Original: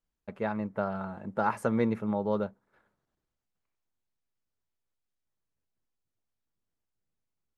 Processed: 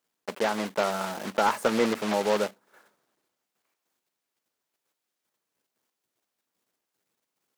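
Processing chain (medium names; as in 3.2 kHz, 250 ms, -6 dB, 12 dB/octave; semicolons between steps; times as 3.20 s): block-companded coder 3-bit; high-pass 300 Hz 12 dB/octave; in parallel at -1 dB: compression, threshold -39 dBFS, peak gain reduction 15.5 dB; on the sum: slew-rate limiter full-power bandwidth 99 Hz; trim +4.5 dB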